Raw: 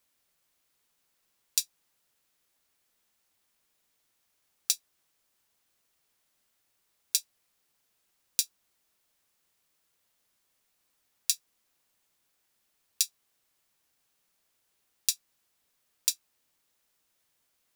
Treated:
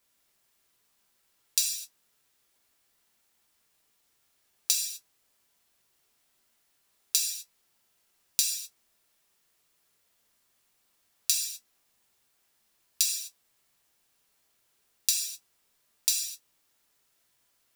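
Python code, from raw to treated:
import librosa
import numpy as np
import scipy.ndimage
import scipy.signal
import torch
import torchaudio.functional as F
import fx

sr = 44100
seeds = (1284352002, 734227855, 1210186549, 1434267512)

y = fx.rev_gated(x, sr, seeds[0], gate_ms=280, shape='falling', drr_db=-1.0)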